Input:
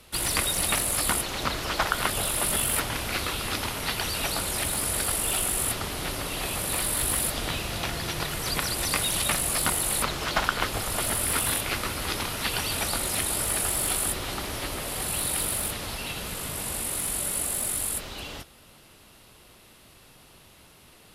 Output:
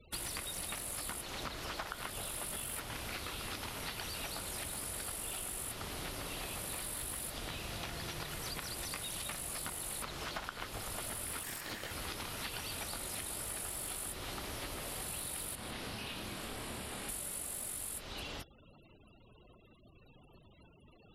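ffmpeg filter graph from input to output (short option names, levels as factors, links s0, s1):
-filter_complex "[0:a]asettb=1/sr,asplit=3[s0][s1][s2];[s0]atrim=end=11.434[s3];[s1]atrim=start=11.43:end=11.91,asetpts=PTS-STARTPTS,afade=t=in:d=0.004:c=qsin,afade=t=out:st=0.476:d=0.004:c=qsin,aeval=exprs='val(0)*sin(2*PI*1800*n/s)':c=same,lowshelf=f=330:g=7,bandreject=f=6100:w=19[s4];[s2]atrim=start=11.906[s5];[s3][s4]acrossfade=d=0.004:c1=hsin:c2=qsin[s6];[s6][s5]acrossfade=d=0.004:c1=qsin:c2=hsin,asettb=1/sr,asplit=3[s7][s8][s9];[s7]atrim=end=15.554[s10];[s8]atrim=start=15.55:end=17.09,asetpts=PTS-STARTPTS,afade=t=in:d=0.004:c=qsin,afade=t=out:st=1.536:d=0.004:c=qsin,acrossover=split=5600[s11][s12];[s12]acompressor=threshold=0.00794:ratio=4:attack=1:release=60[s13];[s11][s13]amix=inputs=2:normalize=0,aeval=exprs='val(0)*sin(2*PI*160*n/s)':c=same,asplit=2[s14][s15];[s15]adelay=27,volume=0.708[s16];[s14][s16]amix=inputs=2:normalize=0,atrim=end_sample=67914[s17];[s9]atrim=start=17.086[s18];[s10][s17]acrossfade=d=0.004:c1=hsin:c2=qsin[s19];[s19][s18]acrossfade=d=0.004:c1=qsin:c2=hsin,afftfilt=real='re*gte(hypot(re,im),0.00398)':imag='im*gte(hypot(re,im),0.00398)':win_size=1024:overlap=0.75,acompressor=threshold=0.0158:ratio=6,volume=0.708"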